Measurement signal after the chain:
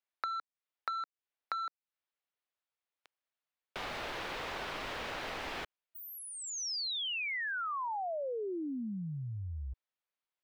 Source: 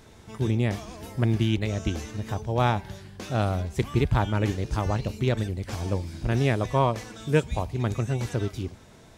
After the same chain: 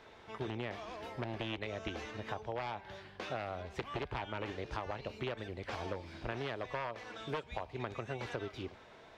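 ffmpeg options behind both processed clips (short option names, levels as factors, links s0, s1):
-filter_complex "[0:a]aeval=exprs='0.141*(abs(mod(val(0)/0.141+3,4)-2)-1)':c=same,acrossover=split=390 4100:gain=0.178 1 0.0708[s0][s1][s2];[s0][s1][s2]amix=inputs=3:normalize=0,acompressor=threshold=0.0178:ratio=12"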